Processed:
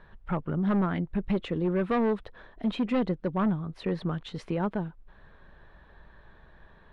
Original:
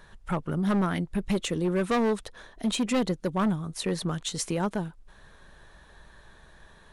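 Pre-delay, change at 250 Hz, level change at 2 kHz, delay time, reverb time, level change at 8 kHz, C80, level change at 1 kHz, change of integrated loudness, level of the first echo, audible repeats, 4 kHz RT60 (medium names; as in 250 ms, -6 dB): no reverb, -0.5 dB, -3.5 dB, no echo, no reverb, under -25 dB, no reverb, -2.0 dB, -1.0 dB, no echo, no echo, no reverb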